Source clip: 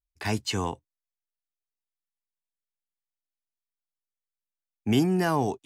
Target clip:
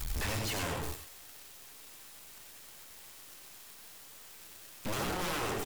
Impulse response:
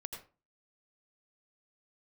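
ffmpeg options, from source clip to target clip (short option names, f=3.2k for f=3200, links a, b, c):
-filter_complex "[0:a]aeval=exprs='val(0)+0.5*0.0447*sgn(val(0))':c=same,aecho=1:1:122:0.335,aeval=exprs='(mod(8.41*val(0)+1,2)-1)/8.41':c=same,aeval=exprs='(tanh(89.1*val(0)+0.6)-tanh(0.6))/89.1':c=same[a];[1:a]atrim=start_sample=2205,atrim=end_sample=4410,asetrate=41454,aresample=44100[b];[a][b]afir=irnorm=-1:irlink=0,volume=7.5dB"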